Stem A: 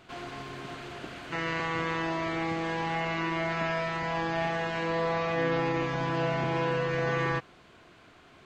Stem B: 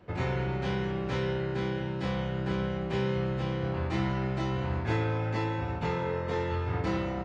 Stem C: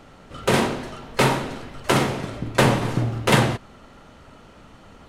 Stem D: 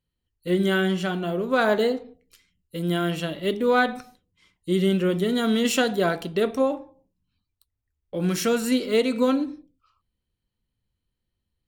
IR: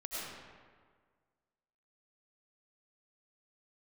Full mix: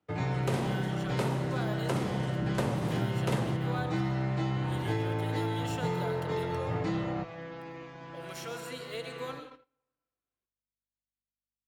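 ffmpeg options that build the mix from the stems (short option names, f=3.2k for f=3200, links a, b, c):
-filter_complex "[0:a]adelay=2000,volume=-16.5dB,asplit=2[a][b];[b]volume=-15dB[c];[1:a]aecho=1:1:6.6:0.87,volume=-2dB,asplit=2[d][e];[e]volume=-17.5dB[f];[2:a]volume=-6.5dB[g];[3:a]highpass=750,aeval=exprs='val(0)+0.000794*(sin(2*PI*50*n/s)+sin(2*PI*2*50*n/s)/2+sin(2*PI*3*50*n/s)/3+sin(2*PI*4*50*n/s)/4+sin(2*PI*5*50*n/s)/5)':c=same,volume=-12dB,asplit=2[h][i];[i]volume=-6dB[j];[4:a]atrim=start_sample=2205[k];[c][f][j]amix=inputs=3:normalize=0[l];[l][k]afir=irnorm=-1:irlink=0[m];[a][d][g][h][m]amix=inputs=5:normalize=0,highpass=50,agate=range=-28dB:threshold=-46dB:ratio=16:detection=peak,acrossover=split=170|920|4300[n][o][p][q];[n]acompressor=threshold=-32dB:ratio=4[r];[o]acompressor=threshold=-31dB:ratio=4[s];[p]acompressor=threshold=-43dB:ratio=4[t];[q]acompressor=threshold=-49dB:ratio=4[u];[r][s][t][u]amix=inputs=4:normalize=0"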